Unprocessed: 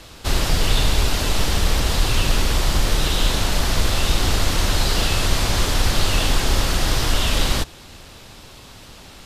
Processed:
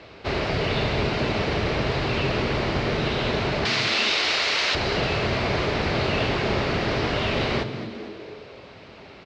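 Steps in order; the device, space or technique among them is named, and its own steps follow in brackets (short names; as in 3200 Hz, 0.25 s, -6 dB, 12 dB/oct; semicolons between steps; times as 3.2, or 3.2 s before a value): 3.65–4.75 weighting filter ITU-R 468; frequency-shifting delay pedal into a guitar cabinet (frequency-shifting echo 0.223 s, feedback 52%, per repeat +100 Hz, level -13 dB; speaker cabinet 90–4100 Hz, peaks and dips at 410 Hz +8 dB, 630 Hz +6 dB, 2200 Hz +5 dB, 3400 Hz -6 dB); gain -2.5 dB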